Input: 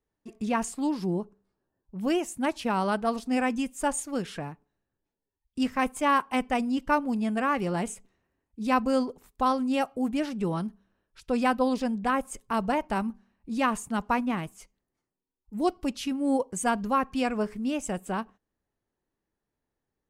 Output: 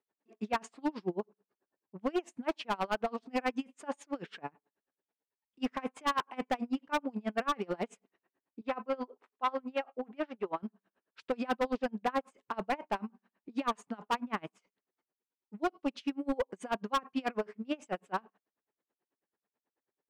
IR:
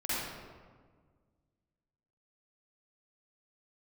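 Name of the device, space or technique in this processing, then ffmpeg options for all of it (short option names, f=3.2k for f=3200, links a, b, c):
helicopter radio: -filter_complex "[0:a]highpass=310,lowpass=3k,aeval=exprs='val(0)*pow(10,-32*(0.5-0.5*cos(2*PI*9.2*n/s))/20)':c=same,asoftclip=type=hard:threshold=-29dB,asettb=1/sr,asplit=3[a][b][c];[a]atrim=end=8.614[d];[b]atrim=start=8.61:end=10.63,asetpts=PTS-STARTPTS,afade=t=in:d=0.004:c=qsin,afade=t=out:st=2.016:d=0.004:c=qsin,bass=f=250:g=-12,treble=f=4k:g=-12[e];[c]atrim=start=10.626[f];[d][e]acrossfade=d=0.004:c1=hsin:c2=qsin[g];[g][f]acrossfade=d=0.004:c1=qsin:c2=hsin,volume=4dB"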